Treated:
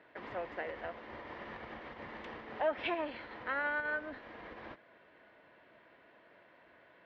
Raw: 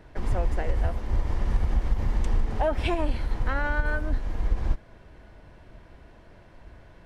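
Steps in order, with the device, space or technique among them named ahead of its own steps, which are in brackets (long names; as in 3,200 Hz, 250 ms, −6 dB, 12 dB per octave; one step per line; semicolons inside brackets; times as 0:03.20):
phone earpiece (loudspeaker in its box 380–3,600 Hz, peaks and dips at 390 Hz −3 dB, 810 Hz −4 dB, 1,900 Hz +4 dB)
level −4.5 dB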